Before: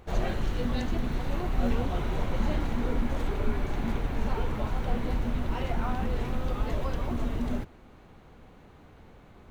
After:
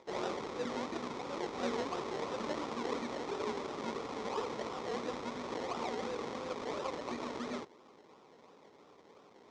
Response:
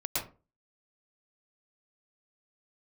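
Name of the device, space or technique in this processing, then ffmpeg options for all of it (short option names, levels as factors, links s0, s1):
circuit-bent sampling toy: -af "acrusher=samples=29:mix=1:aa=0.000001:lfo=1:lforange=17.4:lforate=2.9,highpass=400,equalizer=f=430:t=q:w=4:g=3,equalizer=f=690:t=q:w=4:g=-5,equalizer=f=1100:t=q:w=4:g=3,equalizer=f=1600:t=q:w=4:g=-10,equalizer=f=2800:t=q:w=4:g=-9,equalizer=f=4600:t=q:w=4:g=-5,lowpass=f=5600:w=0.5412,lowpass=f=5600:w=1.3066"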